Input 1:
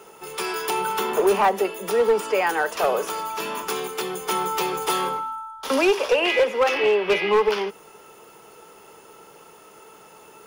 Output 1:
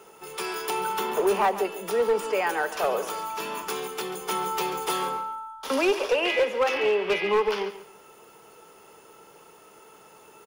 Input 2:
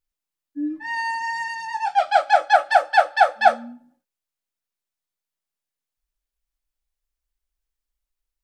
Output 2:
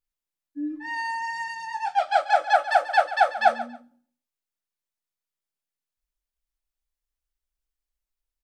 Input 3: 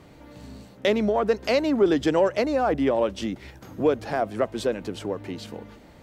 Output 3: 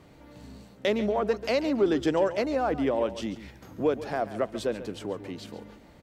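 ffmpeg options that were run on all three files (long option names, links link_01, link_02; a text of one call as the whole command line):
ffmpeg -i in.wav -af "aecho=1:1:139|278:0.2|0.0439,volume=-4dB" out.wav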